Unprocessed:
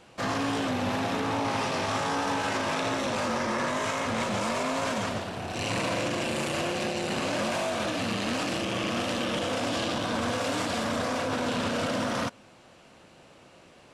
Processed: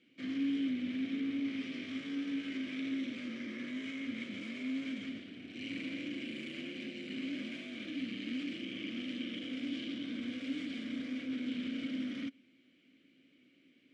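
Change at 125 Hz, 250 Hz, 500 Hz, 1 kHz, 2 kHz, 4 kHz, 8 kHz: −19.5 dB, −4.5 dB, −21.5 dB, −32.0 dB, −13.0 dB, −12.0 dB, below −25 dB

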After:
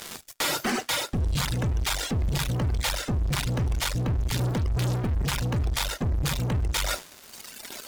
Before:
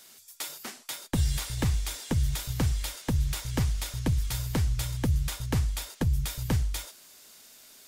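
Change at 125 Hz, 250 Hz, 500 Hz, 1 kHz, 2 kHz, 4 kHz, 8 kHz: +2.5, +2.5, +6.0, +9.0, +8.5, +7.5, +4.0 decibels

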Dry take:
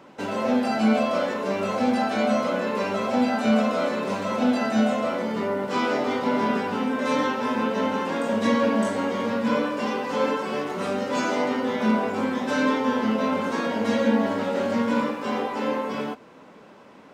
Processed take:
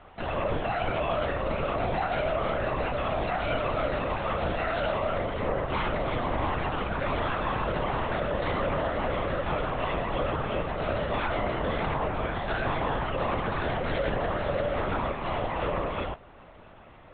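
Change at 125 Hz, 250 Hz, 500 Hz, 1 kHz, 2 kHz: +4.5, −12.5, −4.0, −2.5, −3.0 decibels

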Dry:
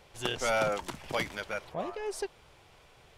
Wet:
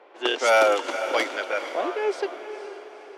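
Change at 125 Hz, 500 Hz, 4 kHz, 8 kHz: below −20 dB, +10.5 dB, +8.0 dB, +4.5 dB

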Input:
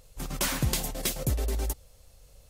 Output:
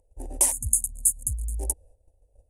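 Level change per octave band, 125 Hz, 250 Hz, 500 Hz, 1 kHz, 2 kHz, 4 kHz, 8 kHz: −4.0 dB, −10.5 dB, −6.0 dB, −4.5 dB, below −10 dB, below −10 dB, +11.0 dB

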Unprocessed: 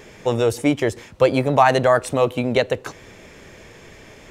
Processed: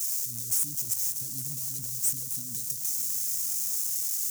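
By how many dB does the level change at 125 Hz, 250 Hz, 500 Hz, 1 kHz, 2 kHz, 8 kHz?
−17.5 dB, −26.5 dB, below −40 dB, below −40 dB, below −25 dB, +11.5 dB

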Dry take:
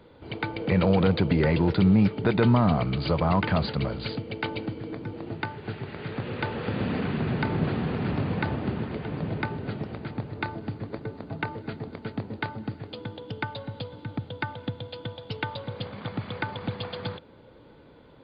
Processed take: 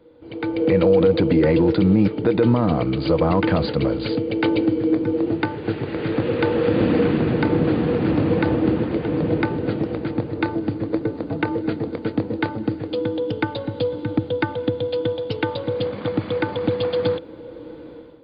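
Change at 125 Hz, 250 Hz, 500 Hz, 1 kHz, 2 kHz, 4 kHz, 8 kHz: +3.0 dB, +7.5 dB, +11.0 dB, +3.5 dB, +3.5 dB, +3.5 dB, can't be measured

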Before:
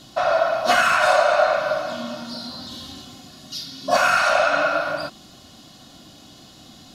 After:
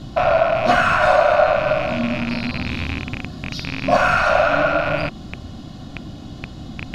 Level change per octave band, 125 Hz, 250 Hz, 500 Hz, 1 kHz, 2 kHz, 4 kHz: +16.5, +10.5, +3.5, +2.0, +1.0, −1.5 decibels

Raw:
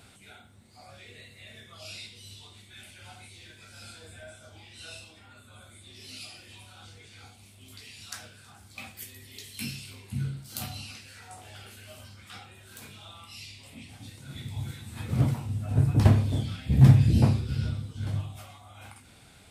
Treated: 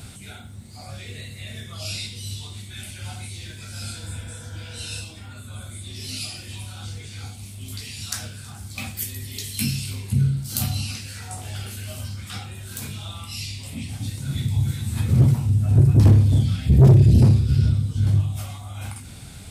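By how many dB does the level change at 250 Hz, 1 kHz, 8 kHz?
+6.0, +2.5, +12.0 decibels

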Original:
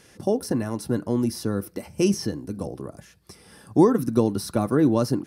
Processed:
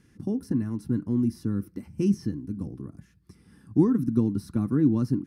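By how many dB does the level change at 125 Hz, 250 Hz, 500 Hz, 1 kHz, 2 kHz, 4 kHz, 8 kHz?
0.0 dB, −1.5 dB, −10.0 dB, −14.5 dB, below −10 dB, below −15 dB, below −15 dB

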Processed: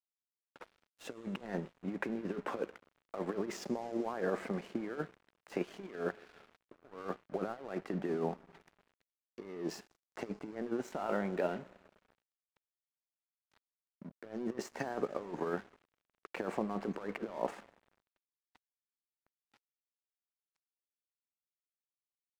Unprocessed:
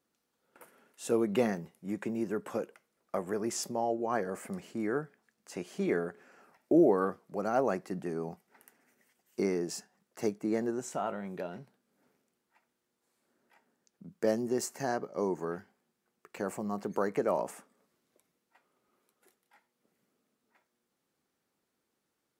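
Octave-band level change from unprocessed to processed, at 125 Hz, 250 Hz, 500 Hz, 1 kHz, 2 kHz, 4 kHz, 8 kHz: −4.0, −6.5, −6.5, −5.5, −2.5, −5.0, −13.0 decibels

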